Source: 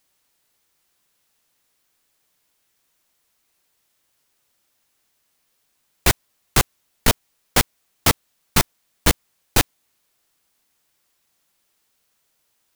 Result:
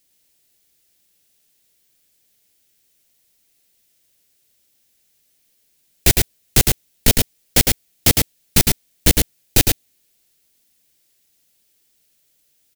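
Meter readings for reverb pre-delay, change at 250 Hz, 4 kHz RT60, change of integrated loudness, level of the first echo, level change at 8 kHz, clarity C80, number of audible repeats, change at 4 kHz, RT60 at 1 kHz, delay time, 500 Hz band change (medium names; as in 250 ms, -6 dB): no reverb, +4.0 dB, no reverb, +4.5 dB, -3.5 dB, +5.5 dB, no reverb, 1, +3.5 dB, no reverb, 107 ms, +1.5 dB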